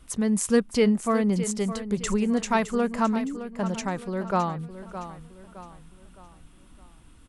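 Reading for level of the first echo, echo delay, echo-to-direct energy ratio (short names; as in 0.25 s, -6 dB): -12.0 dB, 0.614 s, -11.0 dB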